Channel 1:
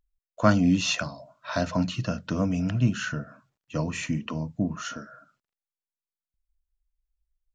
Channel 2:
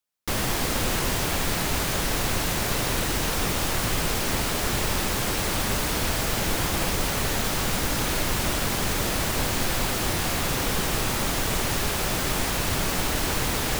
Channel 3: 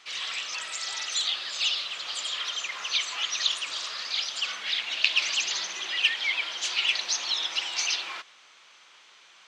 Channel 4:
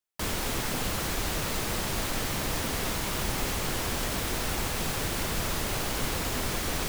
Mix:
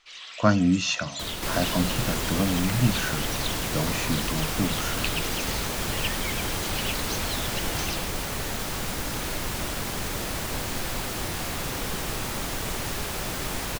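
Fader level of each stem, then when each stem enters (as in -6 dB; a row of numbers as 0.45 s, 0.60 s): 0.0 dB, -5.0 dB, -8.5 dB, -4.0 dB; 0.00 s, 1.15 s, 0.00 s, 1.00 s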